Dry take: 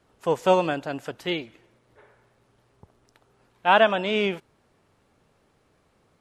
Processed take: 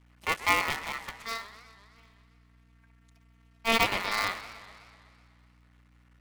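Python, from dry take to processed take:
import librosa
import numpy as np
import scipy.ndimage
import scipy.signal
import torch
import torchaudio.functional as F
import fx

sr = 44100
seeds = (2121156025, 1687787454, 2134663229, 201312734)

y = fx.cycle_switch(x, sr, every=2, mode='muted')
y = scipy.signal.sosfilt(scipy.signal.butter(2, 79.0, 'highpass', fs=sr, output='sos'), y)
y = y * np.sin(2.0 * np.pi * 1600.0 * np.arange(len(y)) / sr)
y = fx.robotise(y, sr, hz=227.0, at=(1.18, 3.79))
y = fx.add_hum(y, sr, base_hz=60, snr_db=26)
y = fx.echo_warbled(y, sr, ms=125, feedback_pct=67, rate_hz=2.8, cents=194, wet_db=-15)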